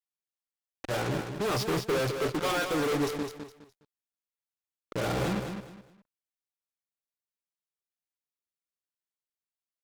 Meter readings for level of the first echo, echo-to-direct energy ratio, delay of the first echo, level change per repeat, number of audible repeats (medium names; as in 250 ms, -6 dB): -7.0 dB, -6.5 dB, 207 ms, -11.5 dB, 3